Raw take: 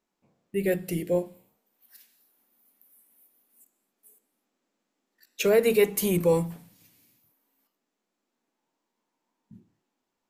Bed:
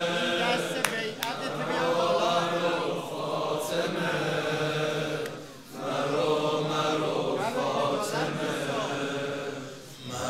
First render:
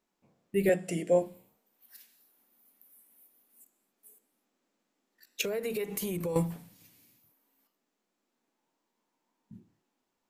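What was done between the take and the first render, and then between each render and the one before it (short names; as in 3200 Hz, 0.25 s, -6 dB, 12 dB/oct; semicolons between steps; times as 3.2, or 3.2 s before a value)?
0.69–1.22 speaker cabinet 190–9200 Hz, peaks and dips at 360 Hz -4 dB, 660 Hz +8 dB, 4100 Hz -8 dB, 7500 Hz +6 dB; 5.41–6.36 compressor 8:1, threshold -30 dBFS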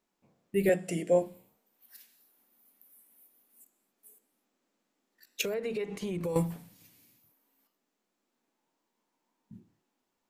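5.54–6.24 air absorption 99 m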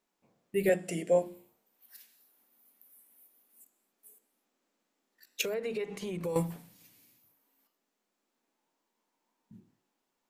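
low shelf 200 Hz -4.5 dB; notches 50/100/150/200/250/300/350 Hz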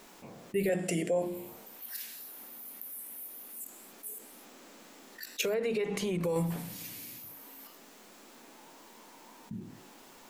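limiter -22 dBFS, peak gain reduction 6.5 dB; fast leveller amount 50%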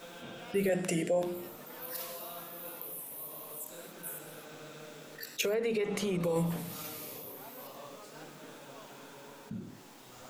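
add bed -21.5 dB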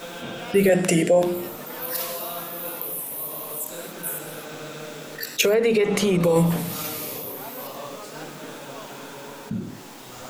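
gain +12 dB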